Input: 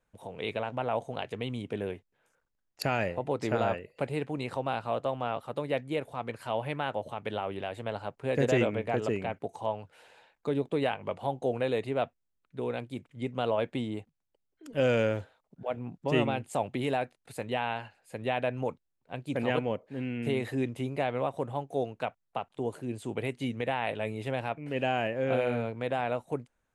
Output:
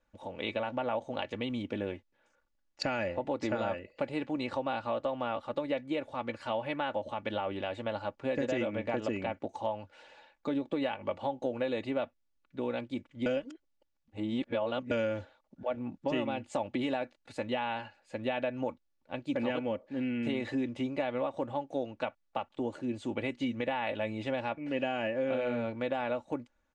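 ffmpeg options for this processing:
-filter_complex "[0:a]asplit=3[s0][s1][s2];[s0]atrim=end=13.262[s3];[s1]atrim=start=13.258:end=14.912,asetpts=PTS-STARTPTS,areverse[s4];[s2]atrim=start=14.908[s5];[s3][s4]acrossfade=d=0.004:c1=hsin:c2=hsin[s6];[s6][s5]acrossfade=d=0.004:c1=hsin:c2=hsin,lowpass=f=6600:w=0.5412,lowpass=f=6600:w=1.3066,aecho=1:1:3.5:0.63,acompressor=threshold=0.0398:ratio=6"

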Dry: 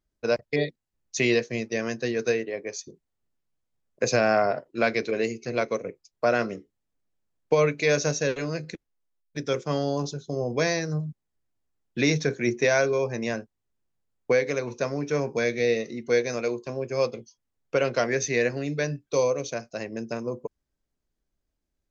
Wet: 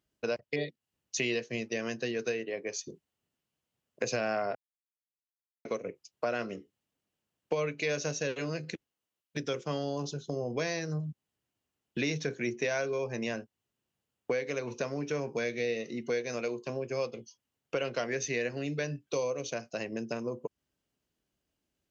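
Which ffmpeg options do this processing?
-filter_complex "[0:a]asplit=3[s0][s1][s2];[s0]atrim=end=4.55,asetpts=PTS-STARTPTS,afade=t=out:st=4.546:d=0.004:c=hsin[s3];[s1]atrim=start=4.55:end=5.65,asetpts=PTS-STARTPTS,volume=0[s4];[s2]atrim=start=5.65,asetpts=PTS-STARTPTS,afade=t=in:d=0.004:c=hsin[s5];[s3][s4][s5]concat=n=3:v=0:a=1,highpass=94,equalizer=f=2900:t=o:w=0.26:g=8.5,acompressor=threshold=0.0141:ratio=2.5,volume=1.33"

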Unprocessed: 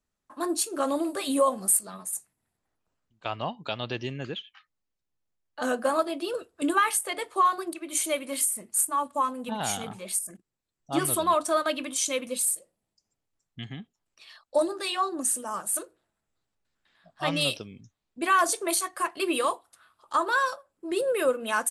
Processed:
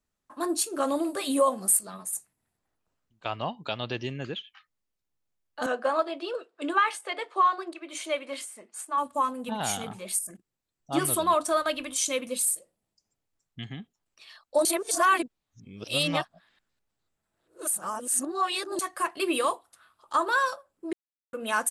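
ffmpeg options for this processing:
-filter_complex "[0:a]asettb=1/sr,asplit=3[s0][s1][s2];[s0]atrim=end=1.174[s3];[s1]atrim=start=1.17:end=1.8,asetpts=PTS-STARTPTS,afade=t=in:d=0.004:c=qsin,afade=t=out:st=0.626:d=0.004:c=qsin,highpass=120[s4];[s2]atrim=start=1.796[s5];[s3][s4]acrossfade=d=0.004:c1=hsin:c2=qsin[s6];[s6][s5]acrossfade=d=0.004:c1=qsin:c2=hsin,asettb=1/sr,asplit=3[s7][s8][s9];[s7]atrim=end=5.664[s10];[s8]atrim=start=5.66:end=8.98,asetpts=PTS-STARTPTS,afade=t=in:d=0.004:c=qsin,afade=t=out:st=3.316:d=0.004:c=qsin,highpass=380,lowpass=4300[s11];[s9]atrim=start=8.976[s12];[s10][s11]acrossfade=d=0.004:c1=hsin:c2=qsin[s13];[s13][s12]acrossfade=d=0.004:c1=qsin:c2=hsin,asplit=3[s14][s15][s16];[s14]afade=t=out:st=11.51:d=0.02[s17];[s15]asubboost=boost=8.5:cutoff=64,afade=t=in:st=11.51:d=0.02,afade=t=out:st=12.02:d=0.02[s18];[s16]afade=t=in:st=12.02:d=0.02[s19];[s17][s18][s19]amix=inputs=3:normalize=0,asplit=5[s20][s21][s22][s23][s24];[s20]atrim=end=14.652[s25];[s21]atrim=start=14.648:end=18.792,asetpts=PTS-STARTPTS,areverse[s26];[s22]atrim=start=18.788:end=20.93,asetpts=PTS-STARTPTS,afade=t=out:st=2.138:d=0.004:c=hsin[s27];[s23]atrim=start=20.93:end=21.33,asetpts=PTS-STARTPTS,volume=0[s28];[s24]atrim=start=21.33,asetpts=PTS-STARTPTS,afade=t=in:d=0.004:c=hsin[s29];[s25][s26]acrossfade=d=0.004:c1=hsin:c2=hsin[s30];[s27][s28][s29]concat=n=3:v=0:a=1[s31];[s30][s31]acrossfade=d=0.004:c1=hsin:c2=hsin"

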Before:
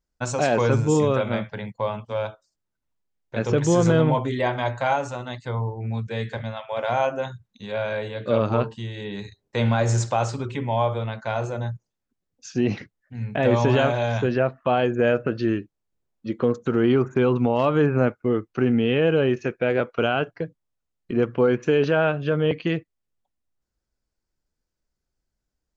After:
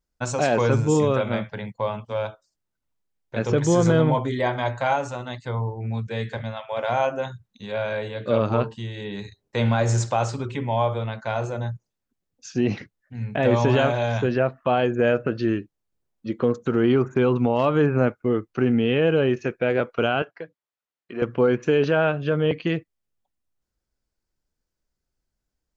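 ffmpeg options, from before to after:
-filter_complex "[0:a]asettb=1/sr,asplit=3[s0][s1][s2];[s0]atrim=end=3.534[s3];[s1]atrim=start=3.53:end=4.63,asetpts=PTS-STARTPTS,afade=t=in:d=0.004:c=qsin,afade=t=out:st=1.096:d=0.004:c=qsin,bandreject=f=2700:w=11[s4];[s2]atrim=start=4.626[s5];[s3][s4]acrossfade=d=0.004:c1=hsin:c2=qsin[s6];[s6][s5]acrossfade=d=0.004:c1=qsin:c2=hsin,asettb=1/sr,asplit=3[s7][s8][s9];[s7]atrim=end=20.224[s10];[s8]atrim=start=20.22:end=21.22,asetpts=PTS-STARTPTS,afade=t=in:d=0.004:c=qsin,afade=t=out:st=0.996:d=0.004:c=qsin,bandpass=f=1700:t=q:w=0.52[s11];[s9]atrim=start=21.216[s12];[s10][s11]acrossfade=d=0.004:c1=hsin:c2=qsin[s13];[s13][s12]acrossfade=d=0.004:c1=qsin:c2=hsin"

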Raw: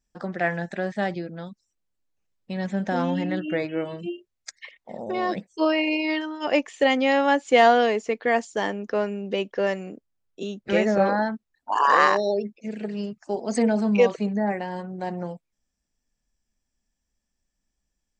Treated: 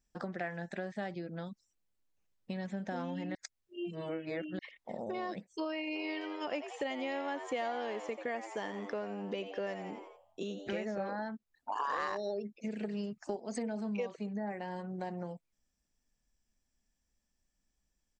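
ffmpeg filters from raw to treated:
-filter_complex "[0:a]asplit=3[s0][s1][s2];[s0]afade=t=out:st=5.94:d=0.02[s3];[s1]asplit=6[s4][s5][s6][s7][s8][s9];[s5]adelay=86,afreqshift=95,volume=0.282[s10];[s6]adelay=172,afreqshift=190,volume=0.132[s11];[s7]adelay=258,afreqshift=285,volume=0.0624[s12];[s8]adelay=344,afreqshift=380,volume=0.0292[s13];[s9]adelay=430,afreqshift=475,volume=0.0138[s14];[s4][s10][s11][s12][s13][s14]amix=inputs=6:normalize=0,afade=t=in:st=5.94:d=0.02,afade=t=out:st=10.72:d=0.02[s15];[s2]afade=t=in:st=10.72:d=0.02[s16];[s3][s15][s16]amix=inputs=3:normalize=0,asettb=1/sr,asplit=3[s17][s18][s19];[s17]atrim=end=11.794[s20];[s18]atrim=start=11.79:end=13.37,asetpts=PTS-STARTPTS,afade=t=in:d=0.004:c=qsin,afade=t=out:st=1.576:d=0.004:c=qsin,acontrast=47[s21];[s19]atrim=start=13.366[s22];[s20][s21]acrossfade=d=0.004:c1=hsin:c2=qsin[s23];[s23][s22]acrossfade=d=0.004:c1=qsin:c2=hsin,asplit=3[s24][s25][s26];[s24]atrim=end=3.352[s27];[s25]atrim=start=3.348:end=4.592,asetpts=PTS-STARTPTS,areverse[s28];[s26]atrim=start=4.588[s29];[s27][s28]acrossfade=d=0.004:c1=hsin:c2=hsin[s30];[s30][s29]acrossfade=d=0.004:c1=hsin:c2=hsin,acompressor=threshold=0.0178:ratio=4,volume=0.794"

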